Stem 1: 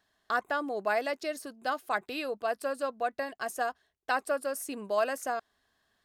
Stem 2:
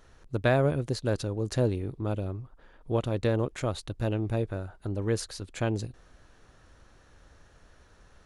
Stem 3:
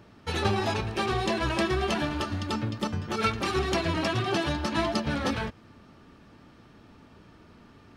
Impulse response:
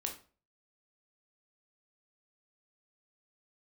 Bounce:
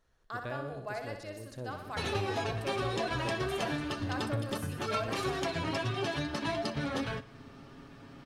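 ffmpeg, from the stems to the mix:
-filter_complex "[0:a]volume=-11dB,asplit=2[link_01][link_02];[link_02]volume=-6.5dB[link_03];[1:a]volume=-16.5dB,asplit=2[link_04][link_05];[link_05]volume=-12dB[link_06];[2:a]aecho=1:1:7.3:0.57,acompressor=threshold=-38dB:ratio=2,adelay=1700,volume=1dB,asplit=2[link_07][link_08];[link_08]volume=-19.5dB[link_09];[link_03][link_06][link_09]amix=inputs=3:normalize=0,aecho=0:1:62|124|186|248|310|372|434|496|558:1|0.59|0.348|0.205|0.121|0.0715|0.0422|0.0249|0.0147[link_10];[link_01][link_04][link_07][link_10]amix=inputs=4:normalize=0"

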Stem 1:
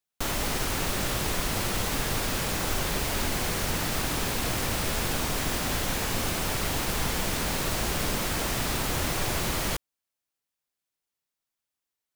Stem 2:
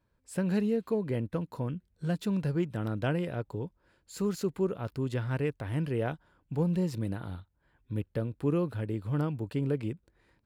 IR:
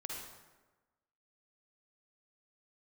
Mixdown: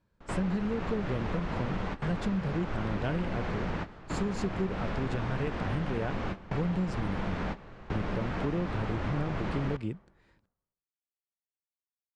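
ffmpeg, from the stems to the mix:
-filter_complex "[0:a]lowpass=1800,volume=-2.5dB,asplit=2[link_01][link_02];[link_02]volume=-16.5dB[link_03];[1:a]volume=0.5dB,asplit=2[link_04][link_05];[link_05]apad=whole_len=536023[link_06];[link_01][link_06]sidechaingate=range=-33dB:threshold=-56dB:ratio=16:detection=peak[link_07];[2:a]atrim=start_sample=2205[link_08];[link_03][link_08]afir=irnorm=-1:irlink=0[link_09];[link_07][link_04][link_09]amix=inputs=3:normalize=0,lowpass=frequency=8000:width=0.5412,lowpass=frequency=8000:width=1.3066,equalizer=frequency=190:width_type=o:width=0.24:gain=7,acompressor=threshold=-27dB:ratio=6"

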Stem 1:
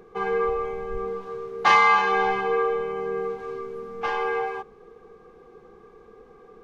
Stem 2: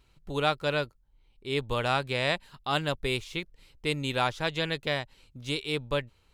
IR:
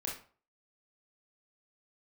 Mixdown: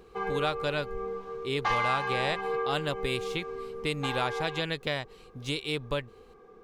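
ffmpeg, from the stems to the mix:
-filter_complex "[0:a]volume=-4.5dB[link_01];[1:a]volume=2dB[link_02];[link_01][link_02]amix=inputs=2:normalize=0,acompressor=threshold=-29dB:ratio=2"

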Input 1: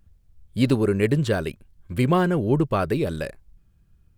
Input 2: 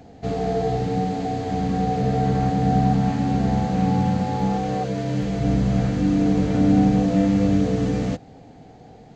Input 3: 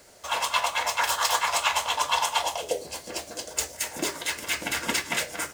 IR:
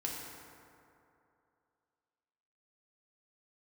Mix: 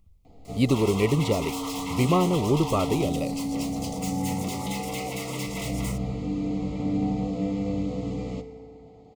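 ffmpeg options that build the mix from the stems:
-filter_complex "[0:a]volume=-2dB,asplit=2[link_01][link_02];[1:a]bandreject=frequency=5900:width=8.6,adelay=250,volume=-12dB,asplit=2[link_03][link_04];[link_04]volume=-7dB[link_05];[2:a]acompressor=threshold=-25dB:ratio=6,volume=34dB,asoftclip=hard,volume=-34dB,adelay=450,volume=0dB,asplit=2[link_06][link_07];[link_07]volume=-22dB[link_08];[link_02]apad=whole_len=414659[link_09];[link_03][link_09]sidechaincompress=threshold=-33dB:ratio=8:attack=16:release=1300[link_10];[3:a]atrim=start_sample=2205[link_11];[link_05][link_08]amix=inputs=2:normalize=0[link_12];[link_12][link_11]afir=irnorm=-1:irlink=0[link_13];[link_01][link_10][link_06][link_13]amix=inputs=4:normalize=0,asuperstop=centerf=1600:order=12:qfactor=2.8"

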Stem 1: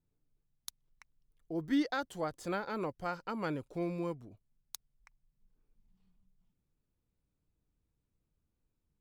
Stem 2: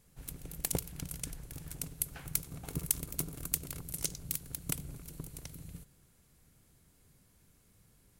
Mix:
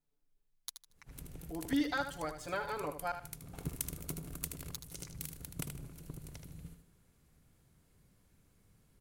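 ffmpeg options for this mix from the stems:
ffmpeg -i stem1.wav -i stem2.wav -filter_complex "[0:a]equalizer=frequency=100:width_type=o:width=2.8:gain=-12,aecho=1:1:7:0.8,volume=-1.5dB,asplit=3[link_01][link_02][link_03];[link_01]atrim=end=3.12,asetpts=PTS-STARTPTS,afade=type=out:start_time=3.116:duration=0.004:curve=hsin[link_04];[link_02]atrim=start=3.12:end=4.51,asetpts=PTS-STARTPTS,volume=0[link_05];[link_03]atrim=start=4.51,asetpts=PTS-STARTPTS,afade=type=in:duration=0.004:curve=hsin[link_06];[link_04][link_05][link_06]concat=n=3:v=0:a=1,asplit=3[link_07][link_08][link_09];[link_08]volume=-9.5dB[link_10];[1:a]highshelf=frequency=3900:gain=-6.5,adelay=900,volume=-2.5dB,asplit=2[link_11][link_12];[link_12]volume=-7dB[link_13];[link_09]apad=whole_len=400892[link_14];[link_11][link_14]sidechaincompress=threshold=-56dB:ratio=5:attack=16:release=272[link_15];[link_10][link_13]amix=inputs=2:normalize=0,aecho=0:1:77|154|231|308:1|0.28|0.0784|0.022[link_16];[link_07][link_15][link_16]amix=inputs=3:normalize=0" out.wav

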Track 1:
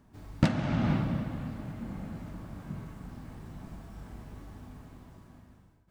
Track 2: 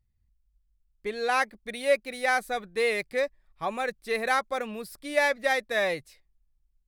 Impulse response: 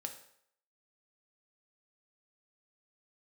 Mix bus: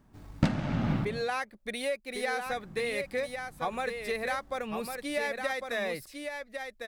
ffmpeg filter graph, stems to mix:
-filter_complex "[0:a]aeval=exprs='if(lt(val(0),0),0.708*val(0),val(0))':channel_layout=same,volume=-3.5dB,asplit=3[link_01][link_02][link_03];[link_01]atrim=end=1.22,asetpts=PTS-STARTPTS,afade=type=out:start_time=1.216:duration=0.004:curve=hsin[link_04];[link_02]atrim=start=1.22:end=2.46,asetpts=PTS-STARTPTS,volume=0[link_05];[link_03]atrim=start=2.46,asetpts=PTS-STARTPTS,afade=type=in:duration=0.004:curve=hsin[link_06];[link_04][link_05][link_06]concat=n=3:v=0:a=1,asplit=2[link_07][link_08];[link_08]volume=-3.5dB[link_09];[1:a]acompressor=threshold=-31dB:ratio=6,volume=1.5dB,asplit=3[link_10][link_11][link_12];[link_11]volume=-6dB[link_13];[link_12]apad=whole_len=260276[link_14];[link_07][link_14]sidechaincompress=threshold=-55dB:ratio=8:attack=16:release=1020[link_15];[2:a]atrim=start_sample=2205[link_16];[link_09][link_16]afir=irnorm=-1:irlink=0[link_17];[link_13]aecho=0:1:1103:1[link_18];[link_15][link_10][link_17][link_18]amix=inputs=4:normalize=0"

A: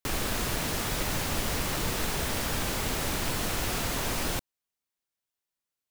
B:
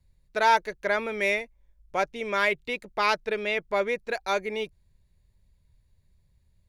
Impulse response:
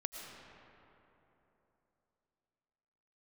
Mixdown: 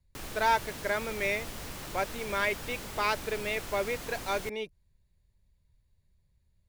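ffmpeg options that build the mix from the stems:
-filter_complex "[0:a]adelay=100,volume=-11dB[link_01];[1:a]volume=-5dB[link_02];[link_01][link_02]amix=inputs=2:normalize=0"

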